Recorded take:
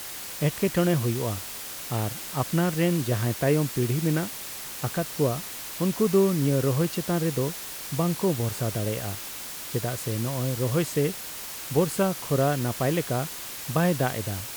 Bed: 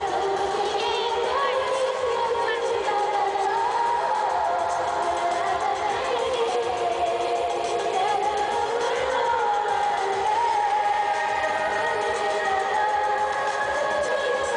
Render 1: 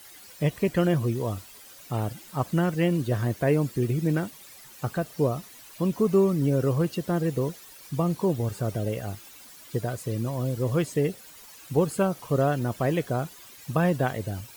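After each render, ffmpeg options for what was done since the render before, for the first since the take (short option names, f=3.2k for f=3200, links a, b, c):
-af "afftdn=nr=14:nf=-37"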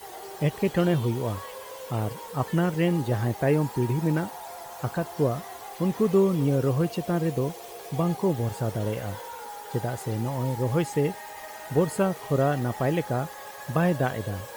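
-filter_complex "[1:a]volume=-17dB[a];[0:a][a]amix=inputs=2:normalize=0"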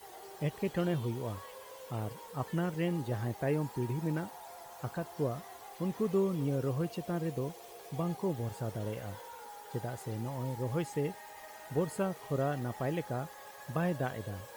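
-af "volume=-9dB"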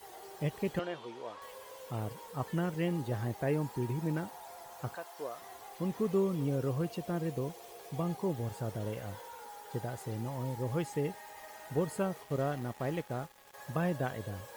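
-filter_complex "[0:a]asettb=1/sr,asplit=3[a][b][c];[a]atrim=end=0.794[d];[b]atrim=start=0.79:end=1.42,asetpts=PTS-STARTPTS,afade=t=in:d=0.004:c=qsin,afade=t=out:st=0.626:d=0.004:c=qsin,highpass=500,lowpass=4.8k[e];[c]atrim=start=1.416[f];[d][e]acrossfade=d=0.004:c1=hsin:c2=qsin[g];[g][f]acrossfade=d=0.004:c1=qsin:c2=hsin,asettb=1/sr,asplit=3[h][i][j];[h]atrim=end=4.954[k];[i]atrim=start=4.95:end=5.42,asetpts=PTS-STARTPTS,afade=t=in:d=0.004:c=qsin,afade=t=out:st=0.466:d=0.004:c=qsin,highpass=640[l];[j]atrim=start=5.416[m];[k][l]acrossfade=d=0.004:c1=hsin:c2=qsin[n];[n][m]acrossfade=d=0.004:c1=qsin:c2=hsin,asettb=1/sr,asplit=3[o][p][q];[o]atrim=end=12.234[r];[p]atrim=start=12.23:end=13.54,asetpts=PTS-STARTPTS,afade=t=in:d=0.004:c=qsin,afade=t=out:st=1.306:d=0.004:c=qsin,aeval=exprs='sgn(val(0))*max(abs(val(0))-0.00355,0)':c=same[s];[q]atrim=start=13.536[t];[r][s]acrossfade=d=0.004:c1=hsin:c2=qsin[u];[u][t]acrossfade=d=0.004:c1=qsin:c2=hsin"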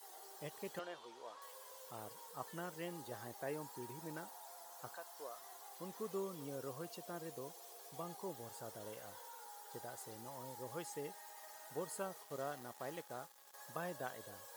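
-af "highpass=f=1.5k:p=1,equalizer=f=2.4k:t=o:w=1.1:g=-9.5"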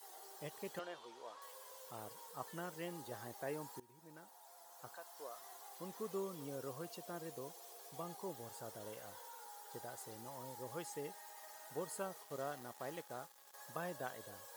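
-filter_complex "[0:a]asplit=2[a][b];[a]atrim=end=3.8,asetpts=PTS-STARTPTS,afade=t=out:st=3.796:d=0.004:c=hsin:silence=0.112202[c];[b]atrim=start=3.8,asetpts=PTS-STARTPTS,afade=t=in:d=1.59:silence=0.112202[d];[c][d]concat=n=2:v=0:a=1"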